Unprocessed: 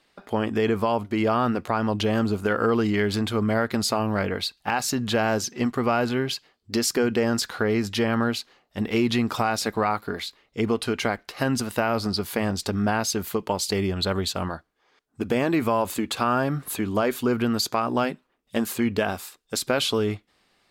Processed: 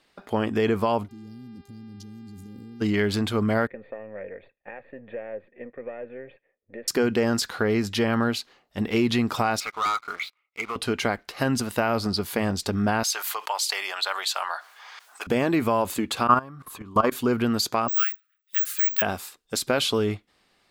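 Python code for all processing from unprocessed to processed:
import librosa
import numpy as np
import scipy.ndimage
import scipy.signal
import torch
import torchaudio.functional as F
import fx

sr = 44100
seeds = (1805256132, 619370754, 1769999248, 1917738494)

y = fx.cheby1_bandstop(x, sr, low_hz=260.0, high_hz=5200.0, order=3, at=(1.08, 2.8), fade=0.02)
y = fx.level_steps(y, sr, step_db=21, at=(1.08, 2.8), fade=0.02)
y = fx.dmg_buzz(y, sr, base_hz=400.0, harmonics=13, level_db=-59.0, tilt_db=-5, odd_only=False, at=(1.08, 2.8), fade=0.02)
y = fx.chain(y, sr, fx.halfwave_gain(db=-7.0),
    fx.formant_cascade(vowel='e'),
    fx.band_squash(depth_pct=40), at=(3.67, 6.88))
y = fx.chain(y, sr, fx.double_bandpass(hz=1700.0, octaves=0.75),
    fx.leveller(passes=3), at=(9.6, 10.76))
y = fx.chain(y, sr, fx.highpass(hz=800.0, slope=24),
    fx.env_flatten(amount_pct=50), at=(13.03, 15.27))
y = fx.chain(y, sr, fx.low_shelf(hz=260.0, db=4.5),
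    fx.level_steps(step_db=21),
    fx.small_body(hz=(1100.0,), ring_ms=20, db=16), at=(16.27, 17.12))
y = fx.chain(y, sr, fx.high_shelf(hz=3700.0, db=-4.5),
    fx.resample_bad(factor=2, down='none', up='zero_stuff'),
    fx.brickwall_highpass(low_hz=1200.0), at=(17.88, 19.02))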